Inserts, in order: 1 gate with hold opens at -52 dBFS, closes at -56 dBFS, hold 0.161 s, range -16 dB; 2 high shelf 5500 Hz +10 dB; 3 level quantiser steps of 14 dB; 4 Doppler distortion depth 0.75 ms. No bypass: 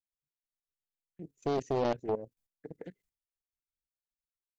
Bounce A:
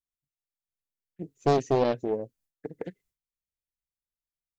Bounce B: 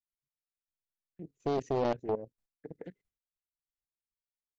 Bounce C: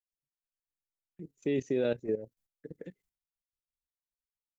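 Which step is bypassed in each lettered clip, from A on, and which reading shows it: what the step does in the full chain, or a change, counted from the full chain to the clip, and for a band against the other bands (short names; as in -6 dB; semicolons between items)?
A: 3, 125 Hz band +2.0 dB; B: 2, 4 kHz band -2.0 dB; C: 4, 1 kHz band -17.5 dB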